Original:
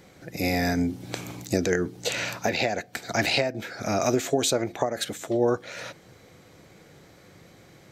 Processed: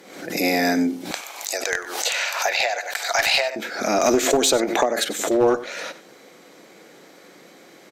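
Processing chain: HPF 230 Hz 24 dB/oct, from 1.11 s 650 Hz, from 3.56 s 230 Hz; one-sided clip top -19 dBFS; echo 95 ms -15.5 dB; backwards sustainer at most 69 dB/s; gain +6 dB

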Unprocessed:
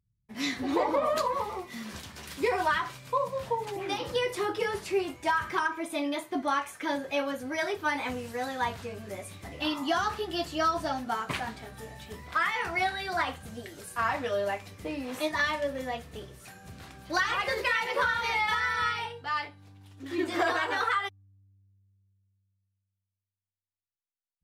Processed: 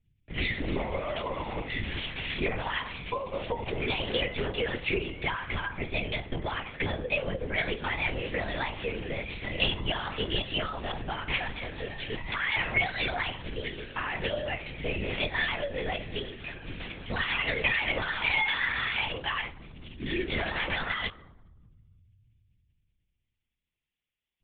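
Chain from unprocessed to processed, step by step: 6.61–7.46 bell 430 Hz +13.5 dB 0.71 oct; compressor 6:1, threshold -35 dBFS, peak gain reduction 14 dB; reverb RT60 1.2 s, pre-delay 3 ms, DRR 17.5 dB; LPC vocoder at 8 kHz whisper; gain +8 dB

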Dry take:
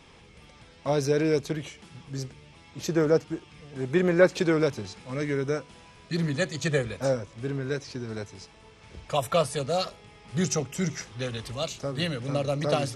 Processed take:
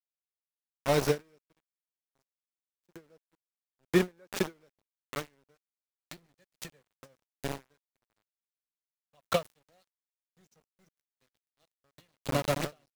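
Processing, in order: frequency-shifting echo 0.116 s, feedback 41%, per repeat +38 Hz, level -18 dB; sample gate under -25.5 dBFS; ending taper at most 340 dB/s

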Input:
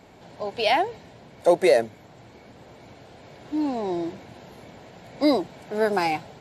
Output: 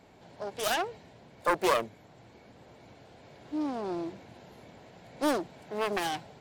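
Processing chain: self-modulated delay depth 0.56 ms; gain -6.5 dB

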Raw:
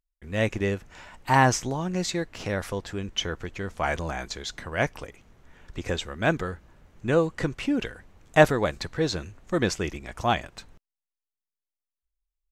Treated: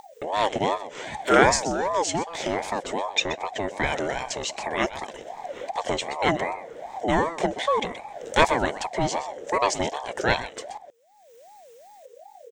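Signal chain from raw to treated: fixed phaser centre 2900 Hz, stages 8; on a send: echo 0.126 s -14.5 dB; on the sum: upward compressor, threshold -29 dBFS; ring modulator with a swept carrier 650 Hz, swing 30%, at 2.6 Hz; gain +8 dB

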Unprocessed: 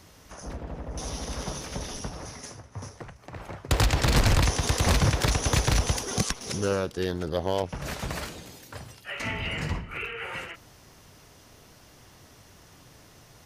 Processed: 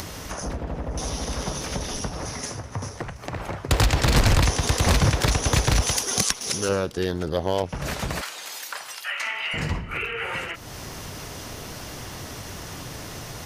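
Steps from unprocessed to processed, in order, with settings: 5.82–6.69 tilt +2 dB/oct; 8.21–9.54 Chebyshev high-pass 1100 Hz, order 2; upward compressor, threshold -26 dBFS; gain +3 dB

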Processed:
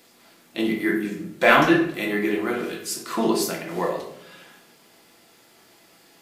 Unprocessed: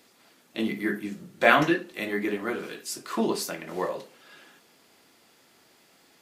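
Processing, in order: high shelf 10000 Hz +4 dB; in parallel at -9 dB: hard clip -13.5 dBFS, distortion -14 dB; on the sum: shoebox room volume 180 m³, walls mixed, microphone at 0.75 m

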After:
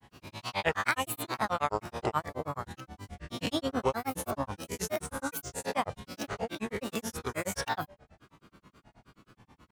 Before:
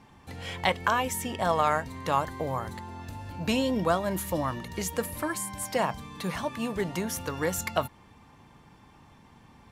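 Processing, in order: spectral swells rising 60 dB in 0.82 s; de-hum 214.7 Hz, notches 3; grains, grains 9.4/s, spray 10 ms, pitch spread up and down by 7 st; gain -2.5 dB

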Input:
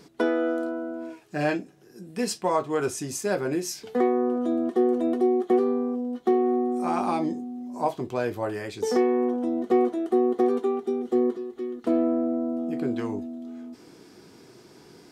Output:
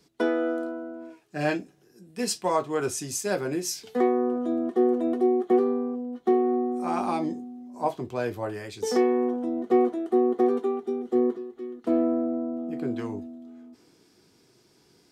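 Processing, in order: three-band expander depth 40%; gain -1 dB

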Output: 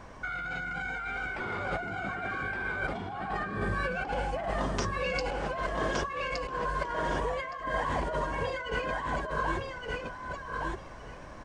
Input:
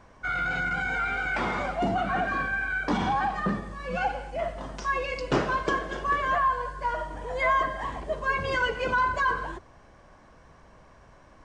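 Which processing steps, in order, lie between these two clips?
1.26–3.92 thirty-one-band EQ 100 Hz +11 dB, 400 Hz +9 dB, 6300 Hz -7 dB; negative-ratio compressor -35 dBFS, ratio -1; feedback echo 1.167 s, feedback 16%, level -3 dB

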